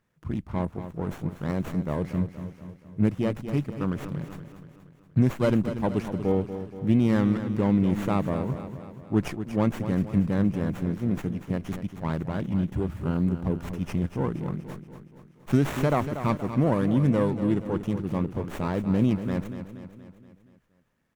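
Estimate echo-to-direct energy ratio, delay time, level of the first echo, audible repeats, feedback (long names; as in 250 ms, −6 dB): −9.0 dB, 237 ms, −10.5 dB, 5, 54%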